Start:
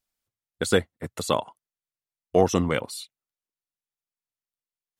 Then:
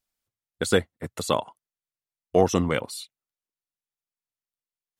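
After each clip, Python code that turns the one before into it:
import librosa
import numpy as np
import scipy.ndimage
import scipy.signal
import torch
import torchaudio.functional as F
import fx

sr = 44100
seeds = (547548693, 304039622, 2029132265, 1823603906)

y = x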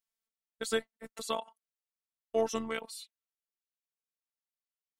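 y = fx.low_shelf(x, sr, hz=280.0, db=-10.0)
y = fx.robotise(y, sr, hz=224.0)
y = y * librosa.db_to_amplitude(-6.0)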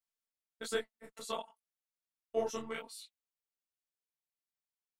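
y = fx.detune_double(x, sr, cents=46)
y = y * librosa.db_to_amplitude(-1.0)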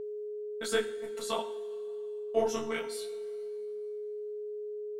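y = fx.rev_double_slope(x, sr, seeds[0], early_s=0.53, late_s=2.6, knee_db=-14, drr_db=8.0)
y = y + 10.0 ** (-41.0 / 20.0) * np.sin(2.0 * np.pi * 420.0 * np.arange(len(y)) / sr)
y = y * librosa.db_to_amplitude(5.0)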